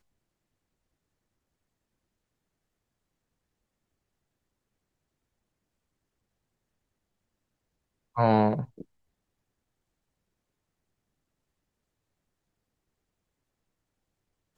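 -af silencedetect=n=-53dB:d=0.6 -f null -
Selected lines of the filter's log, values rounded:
silence_start: 0.00
silence_end: 8.15 | silence_duration: 8.15
silence_start: 8.84
silence_end: 14.57 | silence_duration: 5.74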